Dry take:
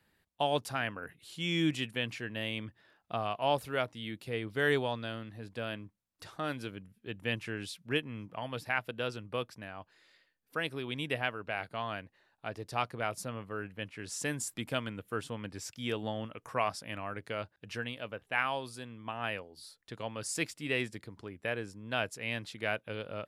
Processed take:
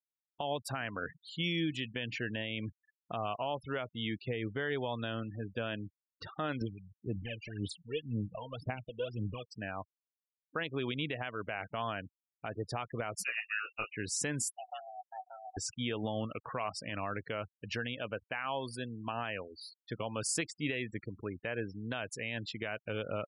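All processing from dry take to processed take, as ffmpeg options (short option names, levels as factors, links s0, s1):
-filter_complex "[0:a]asettb=1/sr,asplit=3[s0][s1][s2];[s0]atrim=end=6.614[s3];[s1]atrim=start=6.61:end=9.53,asetpts=PTS-STARTPTS,afade=t=in:d=0.004:c=qsin,afade=t=out:st=2.916:d=0.004:c=qsin,equalizer=f=1500:w=0.67:g=-10,acompressor=threshold=0.00316:ratio=2:attack=3.2:release=140:knee=1:detection=peak,aphaser=in_gain=1:out_gain=1:delay=2.2:decay=0.76:speed=1.9:type=sinusoidal[s4];[s2]atrim=start=9.526[s5];[s3][s4]acrossfade=d=0.004:c1=hsin:c2=qsin[s6];[s6][s5]acrossfade=d=0.004:c1=qsin:c2=hsin,asettb=1/sr,asplit=3[s7][s8][s9];[s7]atrim=end=13.244[s10];[s8]atrim=start=13.24:end=13.9,asetpts=PTS-STARTPTS,afade=t=in:d=0.004:c=qsin,afade=t=out:st=0.656:d=0.004:c=qsin,highpass=350,asplit=2[s11][s12];[s12]adelay=18,volume=0.631[s13];[s11][s13]amix=inputs=2:normalize=0,atrim=end_sample=29106,lowpass=f=2600:t=q:w=0.5098,lowpass=f=2600:t=q:w=0.6013,lowpass=f=2600:t=q:w=0.9,lowpass=f=2600:t=q:w=2.563,afreqshift=-3000[s14];[s9]atrim=start=13.896[s15];[s10][s14]acrossfade=d=0.004:c1=hsin:c2=qsin[s16];[s16][s15]acrossfade=d=0.004:c1=qsin:c2=hsin,asettb=1/sr,asplit=3[s17][s18][s19];[s17]atrim=end=14.574[s20];[s18]atrim=start=14.57:end=15.57,asetpts=PTS-STARTPTS,afade=t=in:d=0.004:c=qsin,afade=t=out:st=0.996:d=0.004:c=qsin,asplit=3[s21][s22][s23];[s21]bandpass=f=300:t=q:w=8,volume=1[s24];[s22]bandpass=f=870:t=q:w=8,volume=0.501[s25];[s23]bandpass=f=2240:t=q:w=8,volume=0.355[s26];[s24][s25][s26]amix=inputs=3:normalize=0,aemphasis=mode=reproduction:type=50kf,afreqshift=450[s27];[s19]atrim=start=15.566[s28];[s20][s27]acrossfade=d=0.004:c1=hsin:c2=qsin[s29];[s29][s28]acrossfade=d=0.004:c1=qsin:c2=hsin,acompressor=threshold=0.0224:ratio=10,afftfilt=real='re*gte(hypot(re,im),0.00562)':imag='im*gte(hypot(re,im),0.00562)':win_size=1024:overlap=0.75,alimiter=level_in=1.78:limit=0.0631:level=0:latency=1:release=82,volume=0.562,volume=1.78"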